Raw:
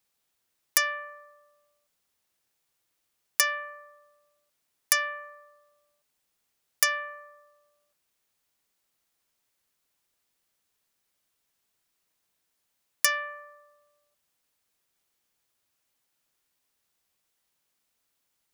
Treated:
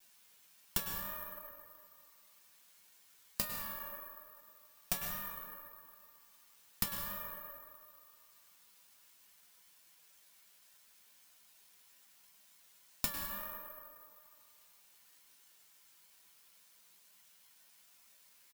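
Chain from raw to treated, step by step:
lower of the sound and its delayed copy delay 0.96 ms
downward compressor 12 to 1, threshold −37 dBFS, peak gain reduction 20 dB
tuned comb filter 200 Hz, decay 0.2 s, harmonics odd, mix 90%
tape wow and flutter 77 cents
pitch-shifted copies added −12 semitones −11 dB, −4 semitones −8 dB
on a send: feedback echo with a band-pass in the loop 153 ms, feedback 64%, band-pass 1,000 Hz, level −12.5 dB
on the sum: dense smooth reverb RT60 1.7 s, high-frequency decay 0.5×, pre-delay 90 ms, DRR 3 dB
bad sample-rate conversion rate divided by 3×, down none, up zero stuff
one half of a high-frequency compander encoder only
level +12 dB

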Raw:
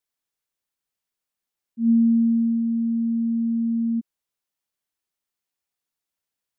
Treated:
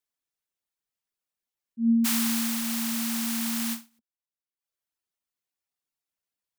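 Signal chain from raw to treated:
0:02.04–0:03.98: compressing power law on the bin magnitudes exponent 0.29
reverb reduction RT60 0.63 s
every ending faded ahead of time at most 230 dB per second
level −3 dB

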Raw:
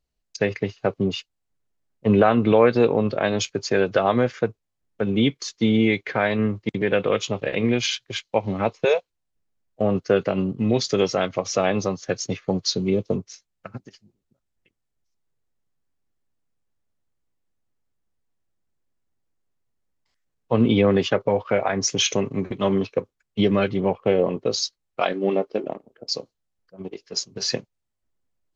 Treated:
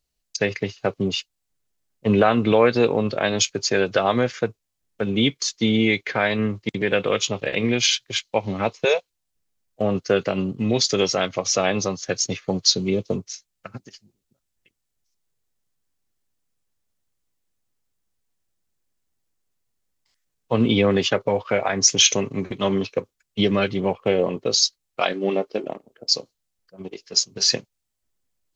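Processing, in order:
high-shelf EQ 2,700 Hz +10.5 dB
level −1 dB

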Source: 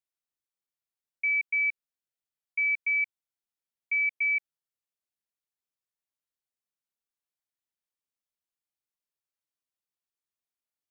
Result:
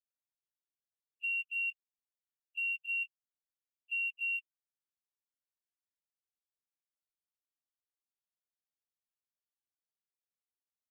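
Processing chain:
partials spread apart or drawn together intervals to 108%
notch filter 2,100 Hz, Q 5.2
in parallel at −11.5 dB: floating-point word with a short mantissa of 2 bits
on the sum: level −8.5 dB

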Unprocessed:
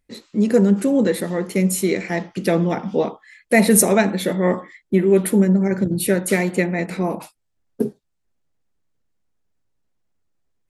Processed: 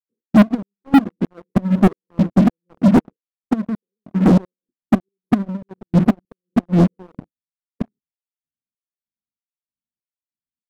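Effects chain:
gate with flip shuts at −9 dBFS, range −27 dB
RIAA equalisation playback
auto-filter band-pass square 1.6 Hz 240–2,900 Hz
linear-phase brick-wall band-stop 540–11,000 Hz
leveller curve on the samples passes 5
expander for the loud parts 1.5 to 1, over −30 dBFS

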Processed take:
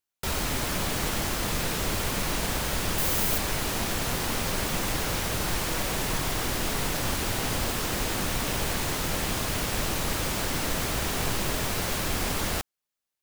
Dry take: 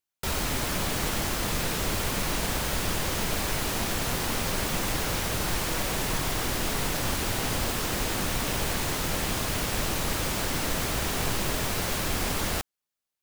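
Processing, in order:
0:02.98–0:03.38: high-shelf EQ 11,000 Hz +12 dB

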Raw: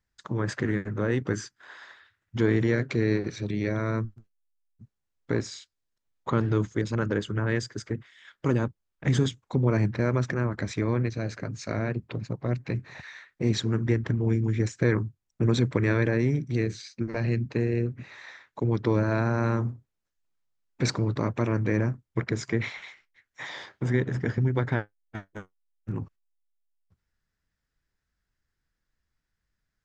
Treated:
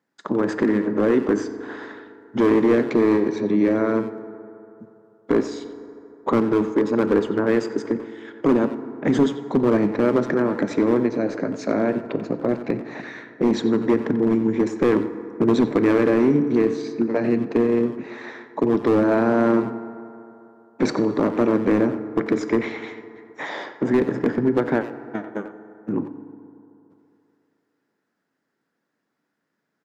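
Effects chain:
high-pass filter 220 Hz 24 dB per octave
tilt shelving filter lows +8.5 dB, about 1,400 Hz
in parallel at −1 dB: downward compressor 10 to 1, threshold −32 dBFS, peak gain reduction 19.5 dB
on the sum: hard clipping −14 dBFS, distortion −15 dB
far-end echo of a speakerphone 90 ms, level −10 dB
on a send at −11 dB: convolution reverb RT60 3.0 s, pre-delay 4 ms
on the sum: level +2.5 dB

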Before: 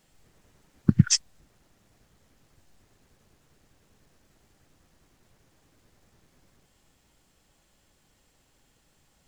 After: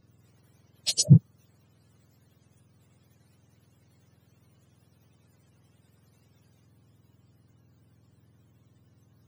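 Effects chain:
frequency axis turned over on the octave scale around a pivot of 940 Hz

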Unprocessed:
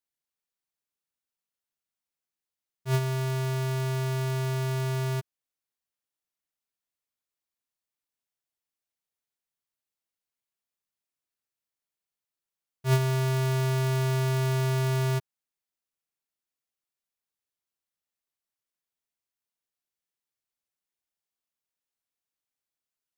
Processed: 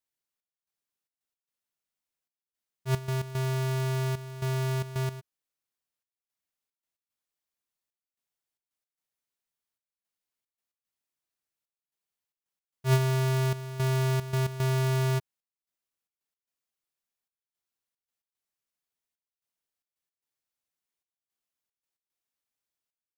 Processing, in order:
gate pattern "xxx..xxx.x.xxx" 112 BPM −12 dB

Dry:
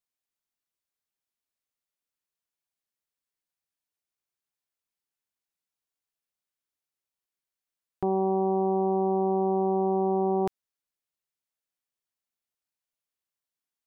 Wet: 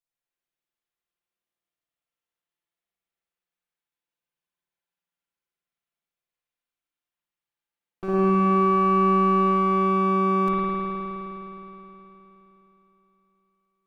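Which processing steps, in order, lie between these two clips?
lower of the sound and its delayed copy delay 5.8 ms
0:08.04–0:09.41: leveller curve on the samples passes 1
spring reverb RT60 3.6 s, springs 52 ms, chirp 75 ms, DRR −9 dB
level −5 dB

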